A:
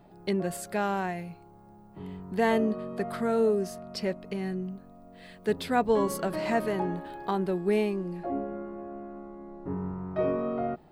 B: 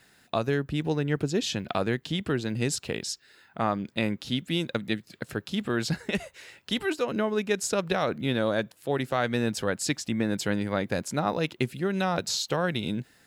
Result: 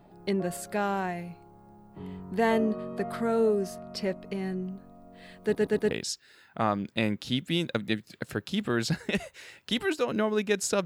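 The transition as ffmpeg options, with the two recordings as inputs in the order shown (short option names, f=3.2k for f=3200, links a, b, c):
-filter_complex "[0:a]apad=whole_dur=10.85,atrim=end=10.85,asplit=4[a][b][c][d];[a]atrim=end=5.552[e];[b]atrim=start=5.428:end=5.552[f];[c]atrim=start=5.428:end=5.552[g];[d]atrim=start=5.428:end=5.552[h];[1:a]atrim=start=2.908:end=7.85[i];[e][f]acrossfade=d=0.004:c1=hsin:c2=hsin[j];[j][g]acrossfade=d=0.004:c1=hsin:c2=hsin[k];[k][h]acrossfade=d=0.004:c1=hsin:c2=hsin[l];[l][i]acrossfade=d=0.004:c1=hsin:c2=hsin"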